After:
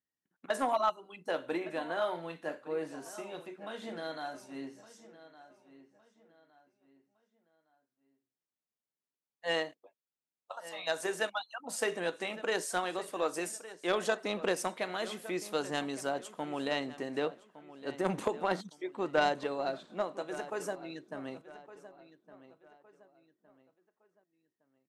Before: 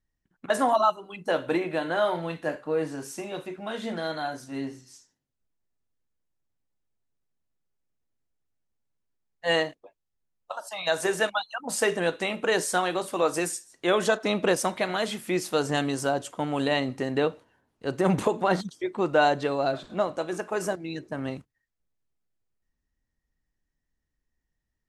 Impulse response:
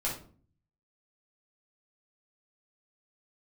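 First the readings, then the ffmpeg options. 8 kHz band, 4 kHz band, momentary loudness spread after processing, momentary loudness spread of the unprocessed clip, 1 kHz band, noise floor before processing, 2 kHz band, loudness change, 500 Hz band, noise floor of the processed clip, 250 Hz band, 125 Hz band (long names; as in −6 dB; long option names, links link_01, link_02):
−8.5 dB, −7.5 dB, 13 LU, 12 LU, −7.5 dB, −82 dBFS, −7.5 dB, −8.0 dB, −8.0 dB, below −85 dBFS, −9.5 dB, −13.5 dB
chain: -filter_complex "[0:a]highpass=210,aeval=exprs='0.355*(cos(1*acos(clip(val(0)/0.355,-1,1)))-cos(1*PI/2))+0.0631*(cos(3*acos(clip(val(0)/0.355,-1,1)))-cos(3*PI/2))+0.00891*(cos(5*acos(clip(val(0)/0.355,-1,1)))-cos(5*PI/2))':channel_layout=same,asplit=2[link_01][link_02];[link_02]adelay=1162,lowpass=frequency=3800:poles=1,volume=-15.5dB,asplit=2[link_03][link_04];[link_04]adelay=1162,lowpass=frequency=3800:poles=1,volume=0.36,asplit=2[link_05][link_06];[link_06]adelay=1162,lowpass=frequency=3800:poles=1,volume=0.36[link_07];[link_03][link_05][link_07]amix=inputs=3:normalize=0[link_08];[link_01][link_08]amix=inputs=2:normalize=0,volume=-4dB"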